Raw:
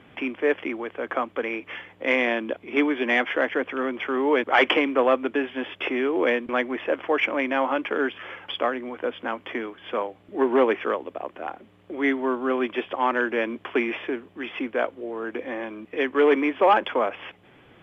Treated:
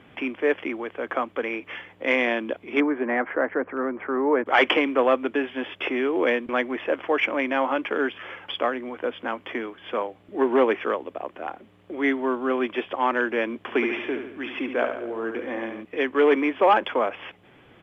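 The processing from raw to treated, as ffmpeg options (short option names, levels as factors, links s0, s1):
-filter_complex "[0:a]asettb=1/sr,asplit=3[s0][s1][s2];[s0]atrim=end=2.804[s3];[s1]atrim=start=2.8:end=4.46,asetpts=PTS-STARTPTS,afade=t=in:d=0.004:c=qsin,afade=t=out:st=1.656:d=0.004:c=qsin,lowpass=f=1700:w=0.5412,lowpass=f=1700:w=1.3066[s4];[s2]atrim=start=4.456[s5];[s3][s4]acrossfade=d=0.004:c1=hsin:c2=qsin[s6];[s6][s5]acrossfade=d=0.004:c1=qsin:c2=hsin,asplit=3[s7][s8][s9];[s7]afade=t=out:st=13.67:d=0.02[s10];[s8]aecho=1:1:71|142|213|284|355|426:0.447|0.237|0.125|0.0665|0.0352|0.0187,afade=t=in:st=13.67:d=0.02,afade=t=out:st=15.82:d=0.02[s11];[s9]afade=t=in:st=15.82:d=0.02[s12];[s10][s11][s12]amix=inputs=3:normalize=0"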